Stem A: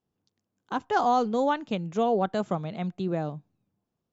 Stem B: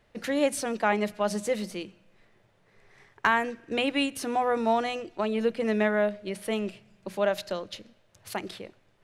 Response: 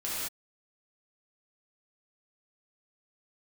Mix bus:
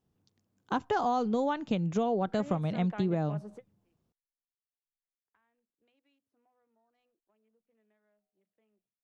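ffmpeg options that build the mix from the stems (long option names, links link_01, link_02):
-filter_complex "[0:a]lowshelf=frequency=190:gain=7.5,volume=1.5dB,asplit=2[link_01][link_02];[1:a]acrossover=split=170|5400[link_03][link_04][link_05];[link_03]acompressor=threshold=-49dB:ratio=4[link_06];[link_04]acompressor=threshold=-29dB:ratio=4[link_07];[link_05]acompressor=threshold=-47dB:ratio=4[link_08];[link_06][link_07][link_08]amix=inputs=3:normalize=0,afwtdn=0.00708,acontrast=37,adelay=2100,volume=-16dB[link_09];[link_02]apad=whole_len=491063[link_10];[link_09][link_10]sidechaingate=range=-33dB:threshold=-57dB:ratio=16:detection=peak[link_11];[link_01][link_11]amix=inputs=2:normalize=0,acompressor=threshold=-25dB:ratio=10"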